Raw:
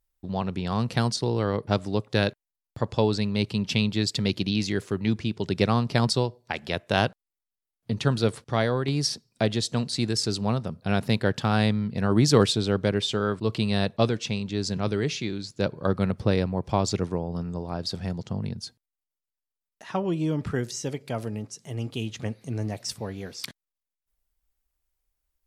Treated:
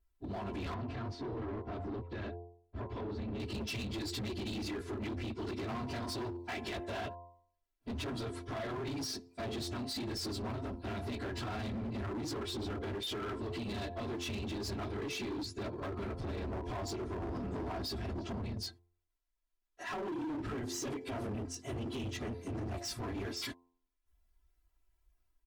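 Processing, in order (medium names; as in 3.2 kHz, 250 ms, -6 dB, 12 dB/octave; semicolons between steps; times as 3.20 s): phase randomisation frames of 50 ms; treble shelf 3.6 kHz -10.5 dB; band-stop 610 Hz, Q 12; comb 3 ms, depth 99%; de-hum 87.01 Hz, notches 12; compression 10:1, threshold -28 dBFS, peak gain reduction 16 dB; peak limiter -29 dBFS, peak gain reduction 10.5 dB; level rider gain up to 4 dB; overload inside the chain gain 34 dB; 0.74–3.40 s: tape spacing loss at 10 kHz 26 dB; trim -2 dB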